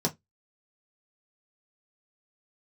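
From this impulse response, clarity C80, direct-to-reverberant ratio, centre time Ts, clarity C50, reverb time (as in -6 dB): 35.0 dB, -2.0 dB, 8 ms, 22.5 dB, 0.15 s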